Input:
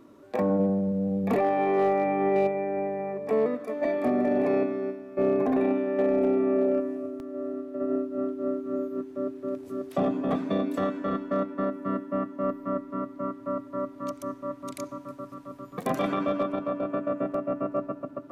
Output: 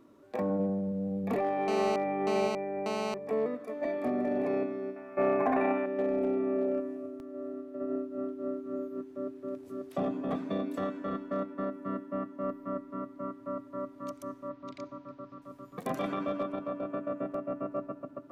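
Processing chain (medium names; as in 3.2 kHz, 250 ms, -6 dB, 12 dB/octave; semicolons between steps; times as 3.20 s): 1.68–3.14 s: mobile phone buzz -28 dBFS; 4.96–5.86 s: high-order bell 1.3 kHz +11 dB 2.3 oct; 14.49–15.42 s: low-pass 4.9 kHz 24 dB/octave; trim -6 dB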